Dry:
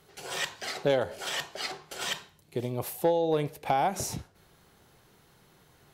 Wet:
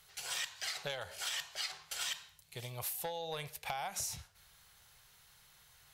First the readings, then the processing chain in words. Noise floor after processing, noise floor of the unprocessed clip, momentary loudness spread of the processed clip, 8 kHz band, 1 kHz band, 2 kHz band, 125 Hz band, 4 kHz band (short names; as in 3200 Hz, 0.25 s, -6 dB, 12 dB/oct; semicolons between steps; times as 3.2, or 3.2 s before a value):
-64 dBFS, -62 dBFS, 8 LU, -1.5 dB, -12.5 dB, -6.0 dB, -12.5 dB, -3.5 dB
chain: passive tone stack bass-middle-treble 10-0-10; compressor 6:1, threshold -39 dBFS, peak gain reduction 9.5 dB; gain +3.5 dB